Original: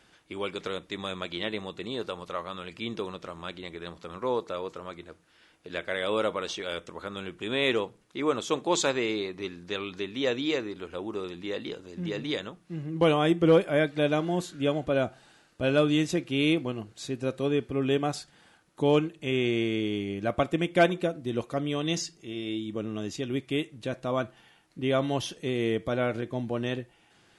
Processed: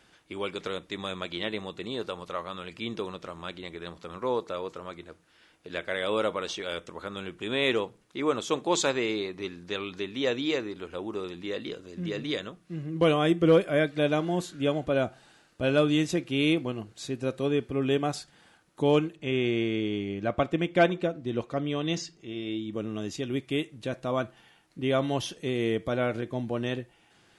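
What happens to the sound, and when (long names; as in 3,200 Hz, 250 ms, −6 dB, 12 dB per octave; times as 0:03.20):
0:11.46–0:14.00: notch filter 860 Hz, Q 6.1
0:19.16–0:22.73: high-frequency loss of the air 74 metres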